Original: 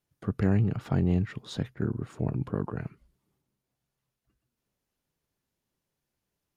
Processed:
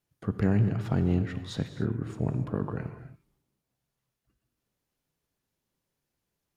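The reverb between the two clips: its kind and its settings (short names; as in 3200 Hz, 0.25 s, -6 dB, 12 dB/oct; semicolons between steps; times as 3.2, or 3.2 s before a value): non-linear reverb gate 0.31 s flat, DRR 9 dB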